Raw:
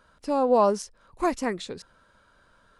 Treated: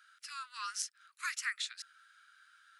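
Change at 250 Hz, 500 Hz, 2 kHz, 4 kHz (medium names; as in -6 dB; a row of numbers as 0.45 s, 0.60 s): under -40 dB, under -40 dB, +1.0 dB, +1.0 dB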